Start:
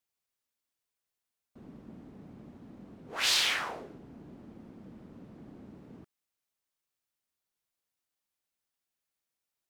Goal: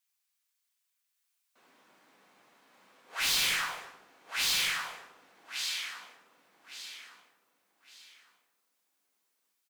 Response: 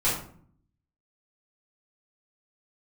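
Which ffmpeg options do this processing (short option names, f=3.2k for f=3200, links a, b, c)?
-filter_complex "[0:a]highpass=1.3k,asplit=2[a][b];[b]aecho=0:1:1161|2322|3483|4644:0.708|0.212|0.0637|0.0191[c];[a][c]amix=inputs=2:normalize=0,volume=32.5dB,asoftclip=hard,volume=-32.5dB,aecho=1:1:241:0.119,asplit=2[d][e];[1:a]atrim=start_sample=2205,highshelf=f=4.5k:g=7[f];[e][f]afir=irnorm=-1:irlink=0,volume=-14.5dB[g];[d][g]amix=inputs=2:normalize=0,volume=2.5dB"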